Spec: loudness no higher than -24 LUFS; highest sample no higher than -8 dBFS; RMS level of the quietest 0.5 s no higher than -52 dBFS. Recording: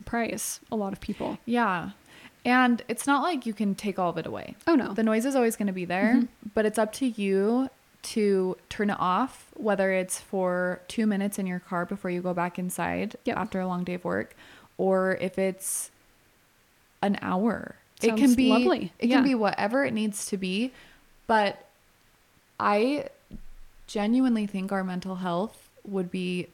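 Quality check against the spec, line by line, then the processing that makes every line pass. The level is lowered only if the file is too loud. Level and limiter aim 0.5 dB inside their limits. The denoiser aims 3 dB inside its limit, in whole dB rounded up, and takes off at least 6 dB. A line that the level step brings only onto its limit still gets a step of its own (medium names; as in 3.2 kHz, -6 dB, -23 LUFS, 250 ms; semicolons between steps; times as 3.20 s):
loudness -27.0 LUFS: pass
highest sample -8.5 dBFS: pass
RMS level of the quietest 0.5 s -63 dBFS: pass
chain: none needed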